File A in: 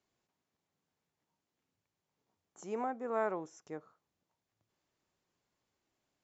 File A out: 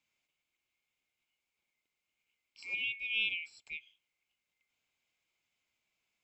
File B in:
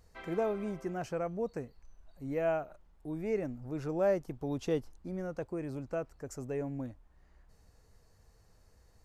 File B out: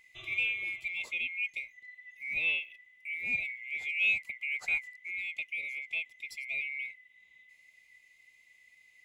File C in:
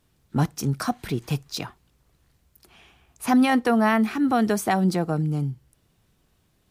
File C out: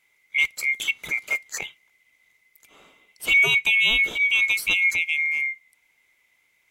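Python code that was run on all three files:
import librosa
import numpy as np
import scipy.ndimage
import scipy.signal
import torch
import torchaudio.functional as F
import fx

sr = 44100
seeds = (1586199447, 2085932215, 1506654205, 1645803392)

y = fx.band_swap(x, sr, width_hz=2000)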